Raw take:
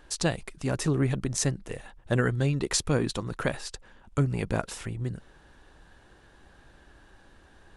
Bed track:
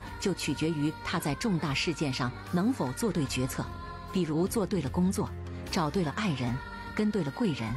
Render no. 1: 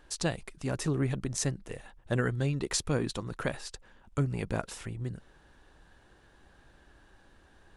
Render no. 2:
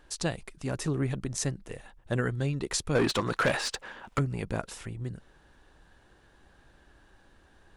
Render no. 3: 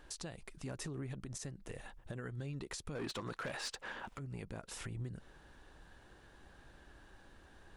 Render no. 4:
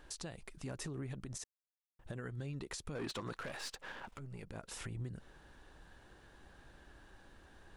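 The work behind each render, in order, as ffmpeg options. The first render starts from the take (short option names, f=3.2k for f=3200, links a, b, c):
-af "volume=-4dB"
-filter_complex "[0:a]asettb=1/sr,asplit=3[a][b][c];[a]atrim=end=2.954[d];[b]atrim=start=2.95:end=4.19,asetpts=PTS-STARTPTS,afade=t=in:d=0.004:c=qsin,afade=t=out:st=1.236:d=0.004:c=qsin,asplit=2[e][f];[f]highpass=f=720:p=1,volume=25dB,asoftclip=type=tanh:threshold=-15.5dB[g];[e][g]amix=inputs=2:normalize=0,lowpass=f=3k:p=1,volume=-6dB[h];[c]atrim=start=4.186[i];[d][h]acrossfade=d=0.004:c1=hsin:c2=qsin[j];[j][i]acrossfade=d=0.004:c1=qsin:c2=hsin"
-af "acompressor=threshold=-37dB:ratio=16,alimiter=level_in=9dB:limit=-24dB:level=0:latency=1:release=86,volume=-9dB"
-filter_complex "[0:a]asettb=1/sr,asplit=3[a][b][c];[a]atrim=end=3.394[d];[b]atrim=start=3.39:end=4.55,asetpts=PTS-STARTPTS,afade=t=in:d=0.004:c=qsin,afade=t=out:st=1.156:d=0.004:c=qsin,aeval=exprs='if(lt(val(0),0),0.447*val(0),val(0))':c=same[e];[c]atrim=start=4.546[f];[d][e]acrossfade=d=0.004:c1=hsin:c2=qsin[g];[g][f]acrossfade=d=0.004:c1=qsin:c2=hsin,asplit=3[h][i][j];[h]atrim=end=1.44,asetpts=PTS-STARTPTS,afade=t=out:st=1.436:d=0.004:c=hsin[k];[i]atrim=start=1.44:end=1.99,asetpts=PTS-STARTPTS,volume=0[l];[j]atrim=start=1.99,asetpts=PTS-STARTPTS,afade=t=in:d=0.004:c=hsin[m];[k][l][m]concat=n=3:v=0:a=1"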